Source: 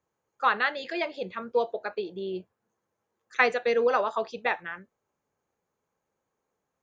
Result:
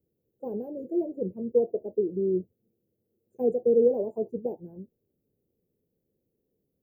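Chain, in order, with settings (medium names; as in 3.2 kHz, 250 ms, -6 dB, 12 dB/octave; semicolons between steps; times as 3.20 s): inverse Chebyshev band-stop 1.2–5.5 kHz, stop band 60 dB; trim +8.5 dB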